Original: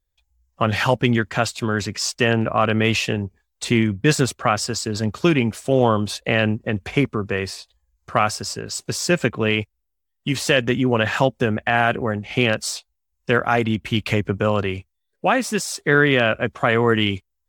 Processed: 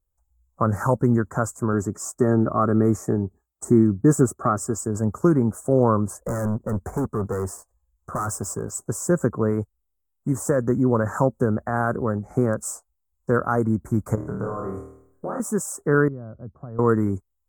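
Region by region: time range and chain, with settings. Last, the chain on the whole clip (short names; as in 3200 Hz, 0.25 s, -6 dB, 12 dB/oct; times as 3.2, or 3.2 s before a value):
1.73–4.78 bell 350 Hz +5 dB 0.99 oct + notch comb 500 Hz
6.23–8.71 sample leveller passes 1 + overloaded stage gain 20 dB
14.15–15.4 compressor 4:1, threshold -27 dBFS + flutter echo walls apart 4.4 m, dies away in 0.71 s
16.08–16.79 compressor 1.5:1, threshold -35 dBFS + band-pass 100 Hz, Q 0.86
whole clip: elliptic band-stop 1300–7300 Hz, stop band 70 dB; dynamic EQ 730 Hz, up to -7 dB, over -36 dBFS, Q 3.4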